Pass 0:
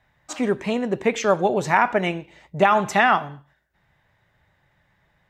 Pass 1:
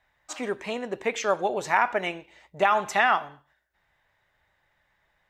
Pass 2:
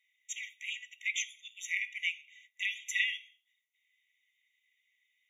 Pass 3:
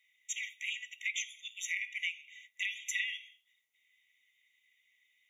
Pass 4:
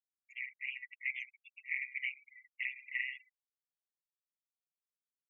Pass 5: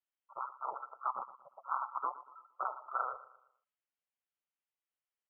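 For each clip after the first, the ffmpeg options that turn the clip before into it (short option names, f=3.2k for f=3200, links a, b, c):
-af "equalizer=f=140:t=o:w=2.3:g=-12.5,volume=-3dB"
-af "afftfilt=real='re*eq(mod(floor(b*sr/1024/1900),2),1)':imag='im*eq(mod(floor(b*sr/1024/1900),2),1)':win_size=1024:overlap=0.75"
-af "acompressor=threshold=-38dB:ratio=3,volume=4dB"
-af "tremolo=f=130:d=0.75,highshelf=f=3.2k:t=q:w=3:g=-12.5,afftfilt=real='re*gte(hypot(re,im),0.0126)':imag='im*gte(hypot(re,im),0.0126)':win_size=1024:overlap=0.75,volume=-4.5dB"
-af "aecho=1:1:116|232|348|464:0.15|0.0613|0.0252|0.0103,lowpass=f=2.8k:t=q:w=0.5098,lowpass=f=2.8k:t=q:w=0.6013,lowpass=f=2.8k:t=q:w=0.9,lowpass=f=2.8k:t=q:w=2.563,afreqshift=-3300,volume=2dB"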